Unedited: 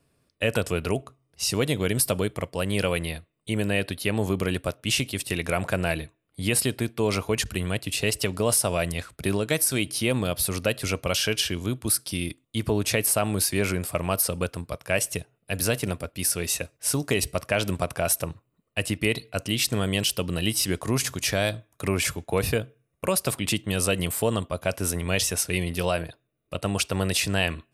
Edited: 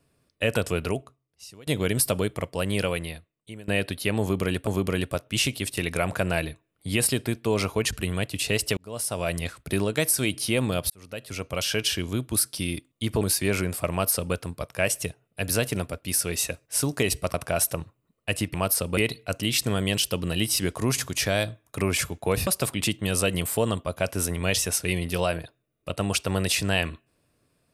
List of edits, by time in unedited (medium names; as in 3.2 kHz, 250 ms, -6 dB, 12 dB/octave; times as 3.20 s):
0.84–1.67 s: fade out quadratic, to -24 dB
2.70–3.68 s: fade out, to -22 dB
4.20–4.67 s: loop, 2 plays
8.30–8.93 s: fade in
10.43–11.41 s: fade in
12.74–13.32 s: delete
14.02–14.45 s: copy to 19.03 s
17.45–17.83 s: delete
22.53–23.12 s: delete